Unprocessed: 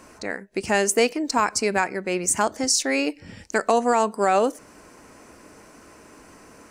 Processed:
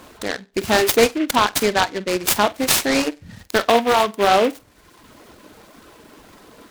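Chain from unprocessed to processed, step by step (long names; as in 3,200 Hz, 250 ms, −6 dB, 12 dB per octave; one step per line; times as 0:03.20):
flutter between parallel walls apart 8.2 metres, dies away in 0.29 s
reverb reduction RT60 1 s
short delay modulated by noise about 2,000 Hz, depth 0.07 ms
level +4.5 dB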